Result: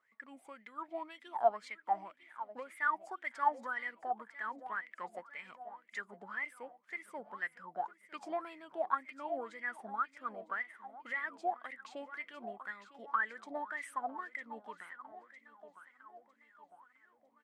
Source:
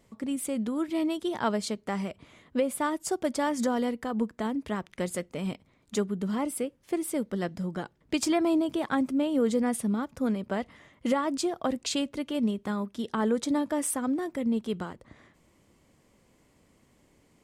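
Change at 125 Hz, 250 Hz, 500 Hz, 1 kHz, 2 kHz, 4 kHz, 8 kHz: under -25 dB, -26.5 dB, -12.0 dB, -1.5 dB, +1.0 dB, -20.0 dB, under -25 dB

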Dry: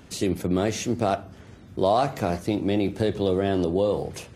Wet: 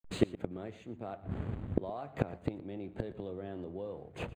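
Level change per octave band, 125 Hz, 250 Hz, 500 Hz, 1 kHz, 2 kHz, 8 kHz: -10.0 dB, -12.5 dB, -15.0 dB, -18.0 dB, -12.5 dB, under -20 dB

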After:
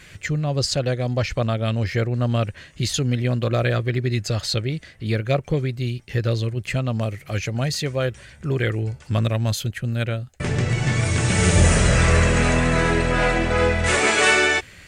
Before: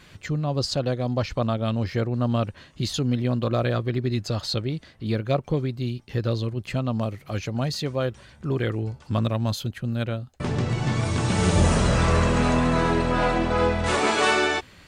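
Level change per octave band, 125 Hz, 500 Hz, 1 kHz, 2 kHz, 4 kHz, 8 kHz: +4.0 dB, +2.0 dB, 0.0 dB, +7.0 dB, +4.0 dB, +8.5 dB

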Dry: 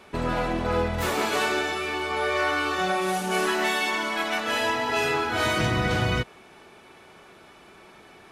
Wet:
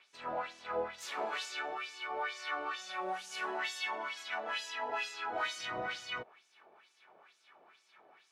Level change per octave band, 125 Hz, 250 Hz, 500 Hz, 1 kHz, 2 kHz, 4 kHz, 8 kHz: -31.5 dB, -22.5 dB, -14.5 dB, -11.5 dB, -12.5 dB, -11.5 dB, -12.5 dB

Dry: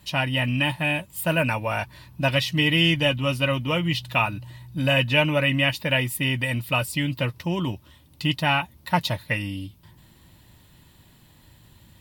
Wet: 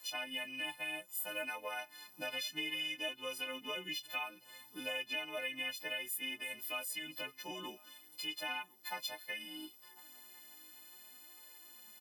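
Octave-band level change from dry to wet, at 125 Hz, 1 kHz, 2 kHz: under -40 dB, -18.5 dB, -15.5 dB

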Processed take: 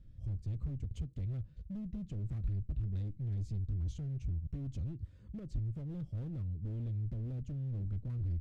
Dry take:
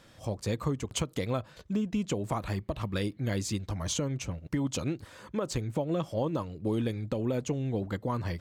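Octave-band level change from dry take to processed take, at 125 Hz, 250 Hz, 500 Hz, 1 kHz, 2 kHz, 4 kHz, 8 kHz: -2.0 dB, -13.0 dB, -23.5 dB, under -25 dB, under -25 dB, under -25 dB, under -25 dB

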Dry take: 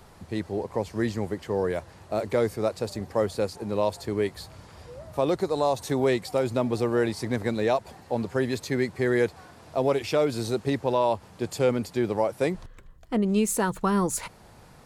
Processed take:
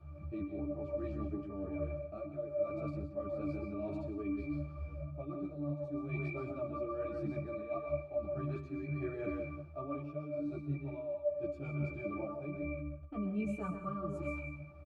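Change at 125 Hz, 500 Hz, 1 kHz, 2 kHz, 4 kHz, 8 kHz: -7.5 dB, -13.5 dB, -16.5 dB, -14.0 dB, under -30 dB, under -35 dB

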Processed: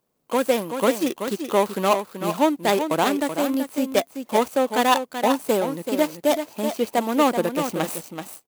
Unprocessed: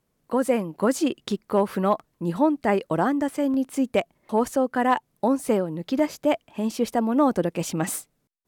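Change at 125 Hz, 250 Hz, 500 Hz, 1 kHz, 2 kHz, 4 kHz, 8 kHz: -3.5 dB, -1.0 dB, +2.5 dB, +3.5 dB, +4.5 dB, +8.5 dB, +3.0 dB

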